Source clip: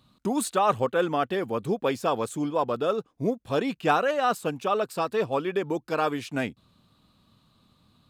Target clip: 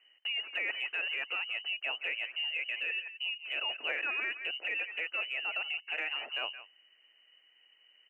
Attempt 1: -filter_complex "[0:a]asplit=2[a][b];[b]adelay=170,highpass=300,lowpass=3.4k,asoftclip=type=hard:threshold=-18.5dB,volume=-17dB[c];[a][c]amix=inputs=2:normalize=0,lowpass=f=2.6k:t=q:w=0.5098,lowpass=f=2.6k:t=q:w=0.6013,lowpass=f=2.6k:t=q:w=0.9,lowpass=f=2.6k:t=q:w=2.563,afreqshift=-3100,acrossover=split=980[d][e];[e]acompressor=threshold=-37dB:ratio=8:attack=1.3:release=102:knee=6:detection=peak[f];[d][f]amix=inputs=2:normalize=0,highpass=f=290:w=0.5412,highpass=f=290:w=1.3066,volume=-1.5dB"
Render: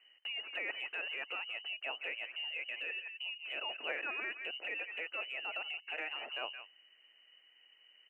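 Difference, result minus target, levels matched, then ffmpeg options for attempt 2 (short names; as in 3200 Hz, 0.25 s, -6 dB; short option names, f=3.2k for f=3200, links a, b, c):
compressor: peak gain reduction +6.5 dB
-filter_complex "[0:a]asplit=2[a][b];[b]adelay=170,highpass=300,lowpass=3.4k,asoftclip=type=hard:threshold=-18.5dB,volume=-17dB[c];[a][c]amix=inputs=2:normalize=0,lowpass=f=2.6k:t=q:w=0.5098,lowpass=f=2.6k:t=q:w=0.6013,lowpass=f=2.6k:t=q:w=0.9,lowpass=f=2.6k:t=q:w=2.563,afreqshift=-3100,acrossover=split=980[d][e];[e]acompressor=threshold=-29.5dB:ratio=8:attack=1.3:release=102:knee=6:detection=peak[f];[d][f]amix=inputs=2:normalize=0,highpass=f=290:w=0.5412,highpass=f=290:w=1.3066,volume=-1.5dB"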